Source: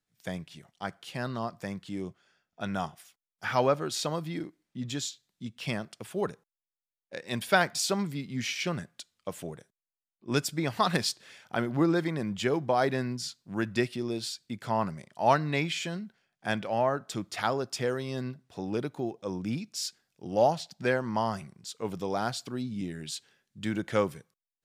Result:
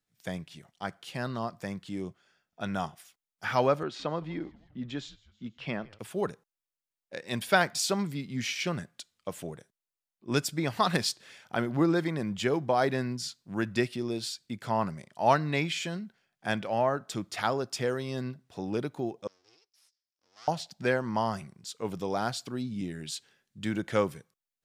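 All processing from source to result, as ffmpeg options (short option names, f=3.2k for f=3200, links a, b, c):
-filter_complex "[0:a]asettb=1/sr,asplit=3[a][b][c];[a]atrim=end=3.834[d];[b]atrim=start=3.83:end=5.99,asetpts=PTS-STARTPTS,afade=t=in:d=0.004:c=qsin,afade=t=out:st=2.156:d=0.004:c=qsin,highpass=150,lowpass=2.7k,asplit=5[e][f][g][h][i];[f]adelay=161,afreqshift=-110,volume=-23dB[j];[g]adelay=322,afreqshift=-220,volume=-27.4dB[k];[h]adelay=483,afreqshift=-330,volume=-31.9dB[l];[i]adelay=644,afreqshift=-440,volume=-36.3dB[m];[e][j][k][l][m]amix=inputs=5:normalize=0,atrim=end_sample=95256[n];[c]atrim=start=5.986[o];[d][n]acrossfade=d=0.004:c1=hsin:c2=qsin[p];[p][o]acrossfade=d=0.004:c1=qsin:c2=hsin,asettb=1/sr,asplit=3[q][r][s];[q]atrim=end=19.274[t];[r]atrim=start=19.27:end=20.48,asetpts=PTS-STARTPTS,afade=t=in:d=0.004:c=qsin,afade=t=out:st=1.206:d=0.004:c=qsin,aemphasis=mode=reproduction:type=riaa,aeval=exprs='abs(val(0))':c=same,bandpass=f=5.3k:t=q:w=5.8[u];[s]atrim=start=20.476[v];[t][u]acrossfade=d=0.004:c1=hsin:c2=qsin[w];[w][v]acrossfade=d=0.004:c1=qsin:c2=hsin"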